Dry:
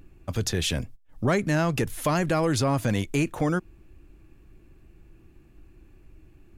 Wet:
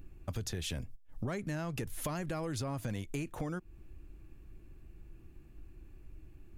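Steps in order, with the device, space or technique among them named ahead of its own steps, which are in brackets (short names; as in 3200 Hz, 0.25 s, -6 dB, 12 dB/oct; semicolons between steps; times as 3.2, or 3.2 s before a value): ASMR close-microphone chain (low shelf 110 Hz +6.5 dB; compressor 5:1, threshold -30 dBFS, peak gain reduction 11 dB; high shelf 11000 Hz +5 dB); gain -5 dB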